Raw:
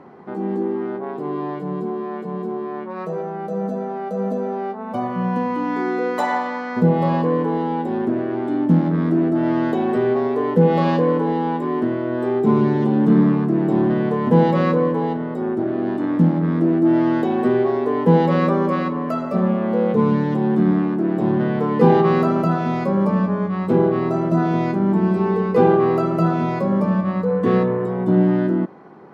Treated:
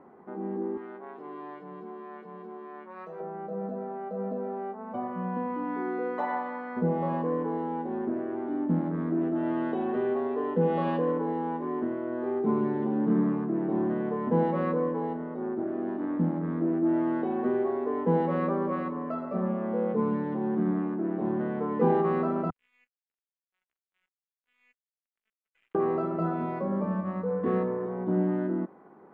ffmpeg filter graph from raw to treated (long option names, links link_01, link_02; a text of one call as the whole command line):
ffmpeg -i in.wav -filter_complex "[0:a]asettb=1/sr,asplit=3[link_01][link_02][link_03];[link_01]atrim=end=0.774[link_04];[link_02]atrim=start=0.77:end=3.2,asetpts=PTS-STARTPTS,afade=type=in:duration=0.004:curve=qsin,afade=type=out:start_time=2.426:duration=0.004:curve=qsin,highpass=130,tiltshelf=frequency=1300:gain=-8.5[link_05];[link_03]atrim=start=3.196[link_06];[link_04][link_05]acrossfade=duration=0.004:curve1=hsin:curve2=qsin[link_07];[link_07][link_06]acrossfade=duration=0.004:curve1=qsin:curve2=hsin,asettb=1/sr,asplit=3[link_08][link_09][link_10];[link_08]atrim=end=9.214[link_11];[link_09]atrim=start=9.21:end=11.12,asetpts=PTS-STARTPTS,afade=type=in:duration=0.004:curve=qsin,afade=type=out:start_time=1.906:duration=0.004:curve=qsin,equalizer=frequency=3100:width=1.4:gain=6.5,bandreject=frequency=2200:width=15[link_12];[link_10]atrim=start=11.116[link_13];[link_11][link_12]acrossfade=duration=0.004:curve1=hsin:curve2=qsin[link_14];[link_14][link_13]acrossfade=duration=0.004:curve1=qsin:curve2=hsin,asettb=1/sr,asplit=3[link_15][link_16][link_17];[link_15]atrim=end=22.504[link_18];[link_16]atrim=start=22.5:end=25.75,asetpts=PTS-STARTPTS,afade=type=in:duration=0.004:curve=qsin,afade=type=out:start_time=3.246:duration=0.004:curve=qsin,asuperpass=centerf=2600:order=12:qfactor=2.2,aeval=exprs='(tanh(17.8*val(0)+0.25)-tanh(0.25))/17.8':channel_layout=same,aeval=exprs='sgn(val(0))*max(abs(val(0))-0.00631,0)':channel_layout=same[link_19];[link_17]atrim=start=25.746[link_20];[link_18][link_19]acrossfade=duration=0.004:curve1=hsin:curve2=qsin[link_21];[link_21][link_20]acrossfade=duration=0.004:curve1=qsin:curve2=hsin,lowpass=1800,equalizer=frequency=130:width_type=o:width=0.44:gain=-13,volume=-9dB" out.wav